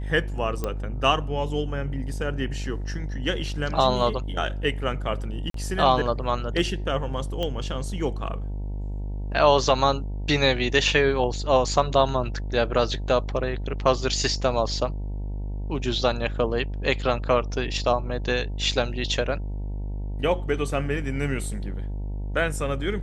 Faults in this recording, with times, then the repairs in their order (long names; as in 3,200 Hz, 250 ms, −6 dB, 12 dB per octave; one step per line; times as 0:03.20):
mains buzz 50 Hz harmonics 19 −30 dBFS
0:00.64: click −14 dBFS
0:05.50–0:05.54: drop-out 43 ms
0:07.43: click −16 dBFS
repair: click removal
hum removal 50 Hz, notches 19
repair the gap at 0:05.50, 43 ms